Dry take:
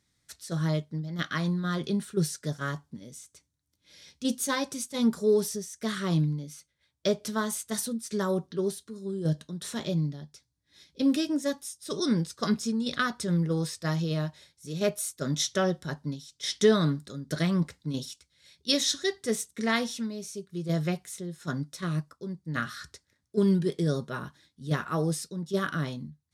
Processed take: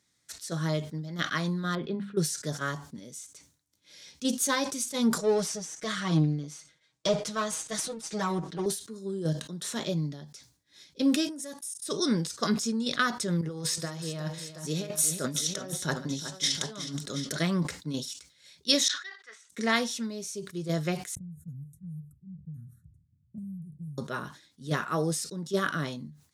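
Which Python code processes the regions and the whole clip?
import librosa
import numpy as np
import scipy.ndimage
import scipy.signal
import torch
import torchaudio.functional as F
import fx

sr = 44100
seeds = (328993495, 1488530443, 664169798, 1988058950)

y = fx.chain(x, sr, fx.air_absorb(metres=400.0),
    fx.hum_notches(base_hz=50, count=5), at=(1.75, 2.17))
y = fx.chain(y, sr, fx.halfwave_gain(db=-7.0),
    fx.lowpass(hz=7700.0, slope=12),
    fx.comb(ms=6.3, depth=0.98), at=(5.18, 8.66))
y = fx.chain(y, sr, fx.highpass(hz=42.0, slope=12),
    fx.peak_eq(hz=10000.0, db=13.0, octaves=0.53),
    fx.level_steps(step_db=20), at=(11.29, 11.87))
y = fx.chain(y, sr, fx.over_compress(threshold_db=-32.0, ratio=-0.5),
    fx.echo_multitap(ms=(143, 367, 727), db=(-19.5, -11.5, -12.5)), at=(13.41, 17.37))
y = fx.chain(y, sr, fx.ladder_bandpass(hz=1700.0, resonance_pct=45),
    fx.sustainer(db_per_s=150.0), at=(18.88, 19.5))
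y = fx.chain(y, sr, fx.cheby2_bandstop(low_hz=430.0, high_hz=5200.0, order=4, stop_db=60),
    fx.env_lowpass(base_hz=1300.0, full_db=-32.5),
    fx.band_squash(depth_pct=100), at=(21.15, 23.98))
y = fx.highpass(y, sr, hz=210.0, slope=6)
y = fx.peak_eq(y, sr, hz=6900.0, db=3.5, octaves=0.55)
y = fx.sustainer(y, sr, db_per_s=130.0)
y = F.gain(torch.from_numpy(y), 1.5).numpy()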